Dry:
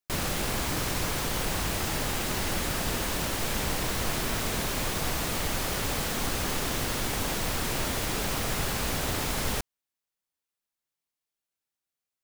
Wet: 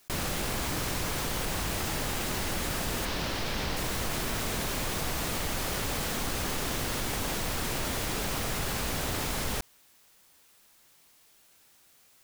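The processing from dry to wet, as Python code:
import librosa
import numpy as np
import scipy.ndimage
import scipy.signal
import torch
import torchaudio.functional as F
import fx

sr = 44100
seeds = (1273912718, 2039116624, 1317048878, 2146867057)

y = fx.high_shelf_res(x, sr, hz=6200.0, db=-6.5, q=1.5, at=(3.05, 3.77))
y = fx.env_flatten(y, sr, amount_pct=50)
y = F.gain(torch.from_numpy(y), -4.0).numpy()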